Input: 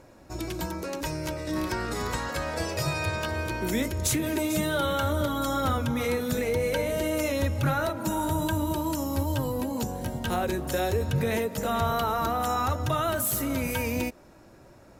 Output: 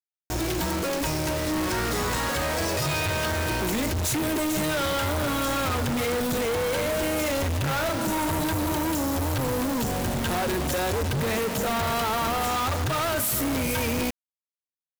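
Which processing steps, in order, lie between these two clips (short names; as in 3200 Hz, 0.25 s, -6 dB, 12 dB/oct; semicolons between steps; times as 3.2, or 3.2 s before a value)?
companded quantiser 2-bit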